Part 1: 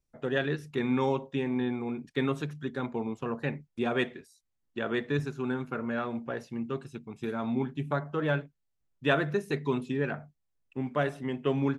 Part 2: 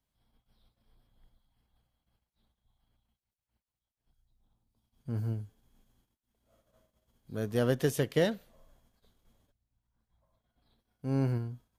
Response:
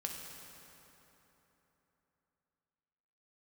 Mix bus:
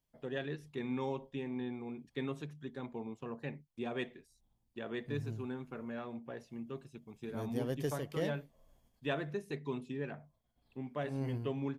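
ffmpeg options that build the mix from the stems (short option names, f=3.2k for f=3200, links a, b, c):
-filter_complex "[0:a]volume=-9.5dB,asplit=2[a][b];[1:a]bandreject=f=3.9k:w=12,volume=-2.5dB[c];[b]apad=whole_len=519825[d];[c][d]sidechaincompress=threshold=-42dB:ratio=8:attack=23:release=527[e];[a][e]amix=inputs=2:normalize=0,equalizer=f=1.4k:t=o:w=0.44:g=-6.5"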